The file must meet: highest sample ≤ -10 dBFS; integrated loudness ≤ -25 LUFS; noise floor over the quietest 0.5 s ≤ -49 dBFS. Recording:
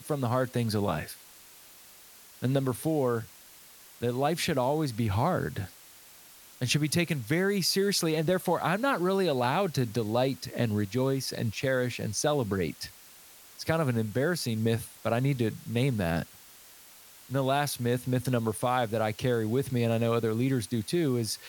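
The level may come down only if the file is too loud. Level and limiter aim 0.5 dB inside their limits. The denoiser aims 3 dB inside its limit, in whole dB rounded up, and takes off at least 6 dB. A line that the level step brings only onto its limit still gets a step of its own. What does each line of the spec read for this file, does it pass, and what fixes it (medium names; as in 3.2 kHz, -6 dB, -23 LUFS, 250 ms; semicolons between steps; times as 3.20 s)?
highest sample -12.0 dBFS: pass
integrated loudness -29.0 LUFS: pass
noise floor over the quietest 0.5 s -53 dBFS: pass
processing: none needed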